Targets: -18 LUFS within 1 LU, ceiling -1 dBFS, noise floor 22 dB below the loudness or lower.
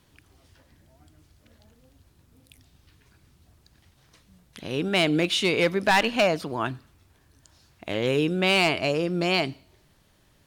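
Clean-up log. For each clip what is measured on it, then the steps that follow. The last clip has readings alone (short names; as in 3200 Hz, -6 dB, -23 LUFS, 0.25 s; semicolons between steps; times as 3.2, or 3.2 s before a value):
clipped 0.4%; flat tops at -14.0 dBFS; loudness -23.5 LUFS; peak -14.0 dBFS; loudness target -18.0 LUFS
-> clip repair -14 dBFS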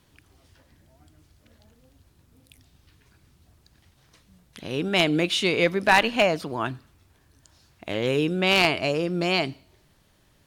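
clipped 0.0%; loudness -23.0 LUFS; peak -5.0 dBFS; loudness target -18.0 LUFS
-> gain +5 dB; limiter -1 dBFS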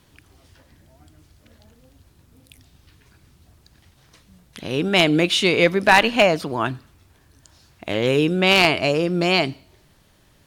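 loudness -18.0 LUFS; peak -1.0 dBFS; noise floor -57 dBFS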